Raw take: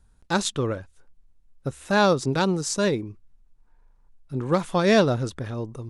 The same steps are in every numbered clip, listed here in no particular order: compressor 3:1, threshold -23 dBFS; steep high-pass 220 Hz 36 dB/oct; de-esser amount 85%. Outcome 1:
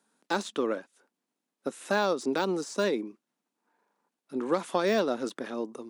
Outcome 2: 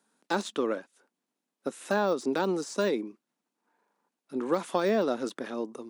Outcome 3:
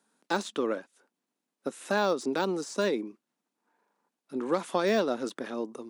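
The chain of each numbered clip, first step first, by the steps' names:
steep high-pass > compressor > de-esser; de-esser > steep high-pass > compressor; compressor > de-esser > steep high-pass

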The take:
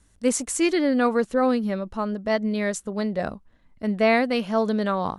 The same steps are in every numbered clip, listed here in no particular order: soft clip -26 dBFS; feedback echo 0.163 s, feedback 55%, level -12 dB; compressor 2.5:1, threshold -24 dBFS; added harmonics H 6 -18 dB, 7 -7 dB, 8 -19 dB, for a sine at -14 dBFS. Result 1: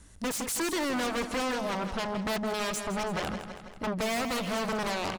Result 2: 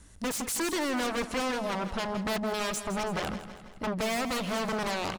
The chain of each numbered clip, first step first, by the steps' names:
added harmonics > compressor > feedback echo > soft clip; added harmonics > compressor > soft clip > feedback echo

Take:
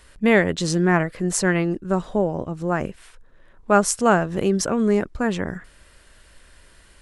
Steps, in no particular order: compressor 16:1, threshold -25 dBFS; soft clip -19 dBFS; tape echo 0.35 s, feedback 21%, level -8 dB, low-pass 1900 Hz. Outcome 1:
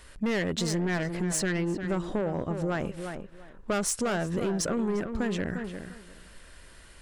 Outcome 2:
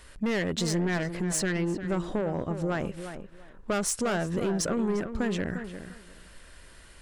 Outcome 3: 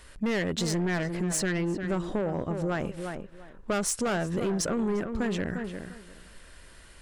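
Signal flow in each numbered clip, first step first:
soft clip > tape echo > compressor; soft clip > compressor > tape echo; tape echo > soft clip > compressor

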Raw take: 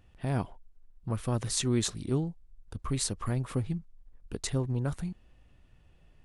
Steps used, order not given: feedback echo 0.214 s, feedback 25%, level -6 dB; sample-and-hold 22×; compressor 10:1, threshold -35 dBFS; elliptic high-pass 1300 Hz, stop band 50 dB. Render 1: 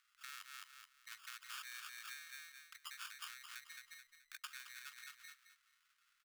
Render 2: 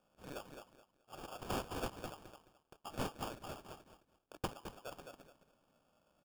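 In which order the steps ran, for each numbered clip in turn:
feedback echo > sample-and-hold > compressor > elliptic high-pass; elliptic high-pass > compressor > feedback echo > sample-and-hold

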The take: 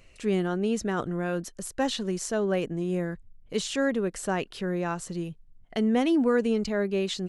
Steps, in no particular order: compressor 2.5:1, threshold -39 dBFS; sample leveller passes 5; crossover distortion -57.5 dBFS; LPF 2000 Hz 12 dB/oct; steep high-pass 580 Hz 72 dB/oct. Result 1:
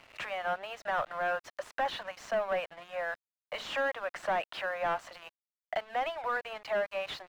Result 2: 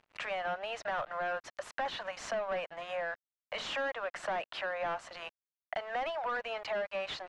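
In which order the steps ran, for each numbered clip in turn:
compressor > steep high-pass > sample leveller > LPF > crossover distortion; steep high-pass > sample leveller > crossover distortion > LPF > compressor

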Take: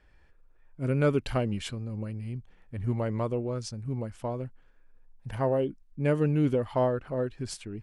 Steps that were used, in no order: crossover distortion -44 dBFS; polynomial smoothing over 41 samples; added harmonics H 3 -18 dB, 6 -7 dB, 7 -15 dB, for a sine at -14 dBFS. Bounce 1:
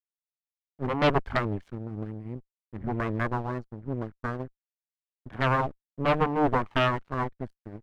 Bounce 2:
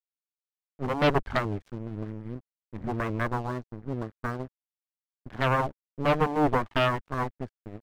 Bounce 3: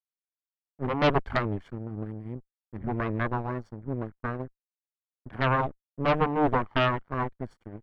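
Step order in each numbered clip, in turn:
polynomial smoothing > crossover distortion > added harmonics; polynomial smoothing > added harmonics > crossover distortion; crossover distortion > polynomial smoothing > added harmonics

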